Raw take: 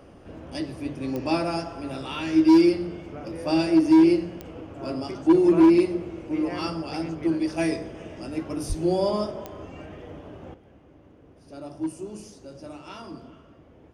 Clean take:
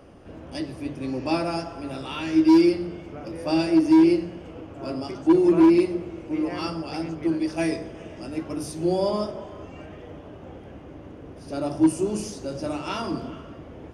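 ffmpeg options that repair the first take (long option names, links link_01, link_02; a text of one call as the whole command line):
ffmpeg -i in.wav -filter_complex "[0:a]adeclick=threshold=4,asplit=3[link_01][link_02][link_03];[link_01]afade=type=out:start_time=8.68:duration=0.02[link_04];[link_02]highpass=frequency=140:width=0.5412,highpass=frequency=140:width=1.3066,afade=type=in:start_time=8.68:duration=0.02,afade=type=out:start_time=8.8:duration=0.02[link_05];[link_03]afade=type=in:start_time=8.8:duration=0.02[link_06];[link_04][link_05][link_06]amix=inputs=3:normalize=0,asetnsamples=nb_out_samples=441:pad=0,asendcmd='10.54 volume volume 11dB',volume=0dB" out.wav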